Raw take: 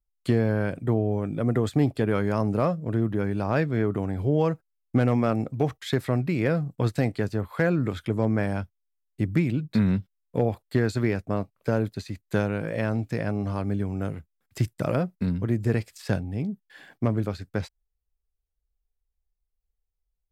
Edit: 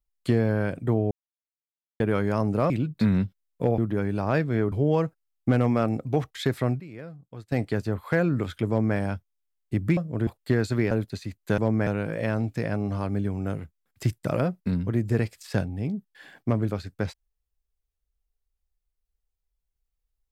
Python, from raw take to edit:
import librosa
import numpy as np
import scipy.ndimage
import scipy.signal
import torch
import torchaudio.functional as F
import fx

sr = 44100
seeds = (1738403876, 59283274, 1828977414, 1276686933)

y = fx.edit(x, sr, fx.silence(start_s=1.11, length_s=0.89),
    fx.swap(start_s=2.7, length_s=0.3, other_s=9.44, other_length_s=1.08),
    fx.cut(start_s=3.94, length_s=0.25),
    fx.fade_down_up(start_s=6.06, length_s=1.14, db=-16.5, fade_s=0.21, curve='log'),
    fx.duplicate(start_s=8.15, length_s=0.29, to_s=12.42),
    fx.cut(start_s=11.16, length_s=0.59), tone=tone)